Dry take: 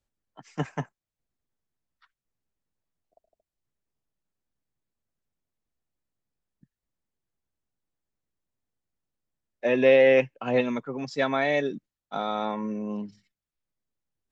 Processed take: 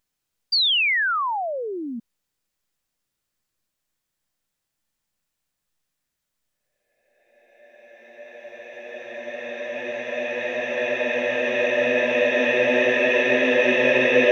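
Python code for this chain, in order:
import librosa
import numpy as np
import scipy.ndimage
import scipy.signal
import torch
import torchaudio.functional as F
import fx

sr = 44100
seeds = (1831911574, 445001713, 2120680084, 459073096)

y = fx.paulstretch(x, sr, seeds[0], factor=24.0, window_s=0.5, from_s=9.12)
y = fx.spec_paint(y, sr, seeds[1], shape='fall', start_s=0.52, length_s=1.48, low_hz=220.0, high_hz=4800.0, level_db=-32.0)
y = fx.tilt_shelf(y, sr, db=-6.5, hz=860.0)
y = y * librosa.db_to_amplitude(7.0)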